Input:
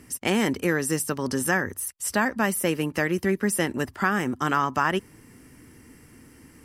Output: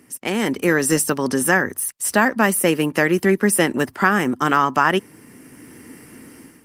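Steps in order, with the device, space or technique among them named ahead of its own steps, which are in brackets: video call (high-pass 160 Hz 12 dB/octave; level rider gain up to 11 dB; Opus 32 kbps 48 kHz)

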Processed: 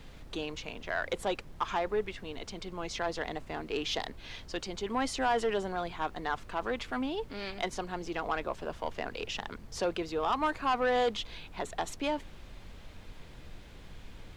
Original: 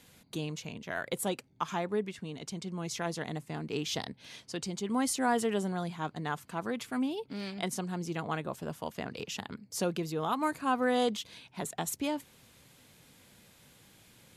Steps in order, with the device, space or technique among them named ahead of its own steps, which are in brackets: aircraft cabin announcement (band-pass 390–4000 Hz; saturation -26 dBFS, distortion -13 dB; brown noise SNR 11 dB); trim +5 dB

